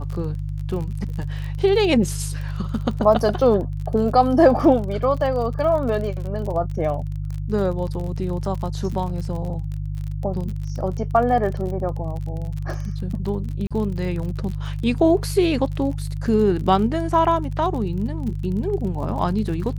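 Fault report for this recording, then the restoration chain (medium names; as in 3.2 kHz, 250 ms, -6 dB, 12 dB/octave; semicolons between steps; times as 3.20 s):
crackle 39 per s -29 dBFS
hum 50 Hz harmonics 3 -27 dBFS
13.67–13.71 s: dropout 36 ms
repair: de-click; de-hum 50 Hz, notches 3; interpolate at 13.67 s, 36 ms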